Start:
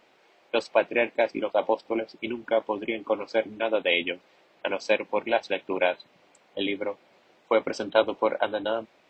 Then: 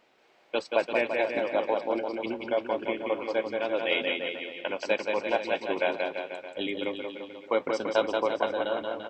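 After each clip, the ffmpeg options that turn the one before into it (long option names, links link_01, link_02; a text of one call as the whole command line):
ffmpeg -i in.wav -af "aecho=1:1:180|342|487.8|619|737.1:0.631|0.398|0.251|0.158|0.1,volume=-4dB" out.wav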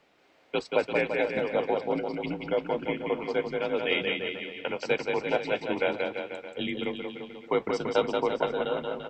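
ffmpeg -i in.wav -af "afreqshift=-65" out.wav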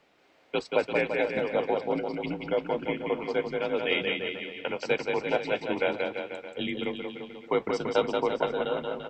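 ffmpeg -i in.wav -af anull out.wav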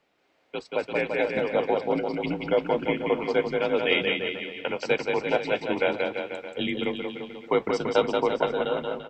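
ffmpeg -i in.wav -af "dynaudnorm=framelen=640:gausssize=3:maxgain=11.5dB,volume=-6dB" out.wav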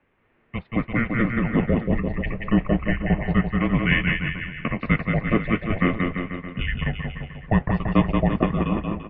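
ffmpeg -i in.wav -af "highpass=frequency=210:width_type=q:width=0.5412,highpass=frequency=210:width_type=q:width=1.307,lowpass=frequency=3000:width_type=q:width=0.5176,lowpass=frequency=3000:width_type=q:width=0.7071,lowpass=frequency=3000:width_type=q:width=1.932,afreqshift=-300,volume=4dB" out.wav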